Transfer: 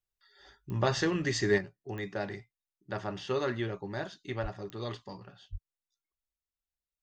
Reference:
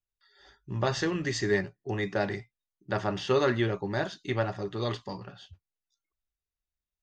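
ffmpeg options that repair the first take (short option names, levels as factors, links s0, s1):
-filter_complex "[0:a]adeclick=t=4,asplit=3[s0][s1][s2];[s0]afade=t=out:st=4.42:d=0.02[s3];[s1]highpass=f=140:w=0.5412,highpass=f=140:w=1.3066,afade=t=in:st=4.42:d=0.02,afade=t=out:st=4.54:d=0.02[s4];[s2]afade=t=in:st=4.54:d=0.02[s5];[s3][s4][s5]amix=inputs=3:normalize=0,asplit=3[s6][s7][s8];[s6]afade=t=out:st=5.51:d=0.02[s9];[s7]highpass=f=140:w=0.5412,highpass=f=140:w=1.3066,afade=t=in:st=5.51:d=0.02,afade=t=out:st=5.63:d=0.02[s10];[s8]afade=t=in:st=5.63:d=0.02[s11];[s9][s10][s11]amix=inputs=3:normalize=0,asetnsamples=n=441:p=0,asendcmd='1.58 volume volume 6.5dB',volume=1"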